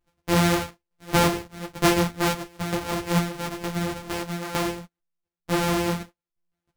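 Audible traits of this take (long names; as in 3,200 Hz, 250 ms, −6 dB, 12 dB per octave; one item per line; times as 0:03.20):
a buzz of ramps at a fixed pitch in blocks of 256 samples
tremolo saw down 1.1 Hz, depth 75%
a shimmering, thickened sound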